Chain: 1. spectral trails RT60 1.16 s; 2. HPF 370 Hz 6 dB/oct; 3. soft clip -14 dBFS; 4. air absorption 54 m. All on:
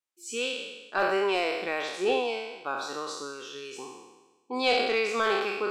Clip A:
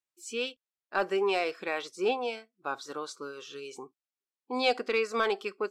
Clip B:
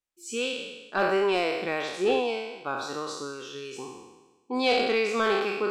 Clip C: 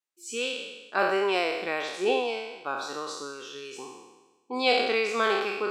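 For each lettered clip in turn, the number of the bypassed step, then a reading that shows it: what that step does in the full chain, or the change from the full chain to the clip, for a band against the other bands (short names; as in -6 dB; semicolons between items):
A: 1, 8 kHz band -3.0 dB; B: 2, 125 Hz band +7.5 dB; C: 3, distortion -20 dB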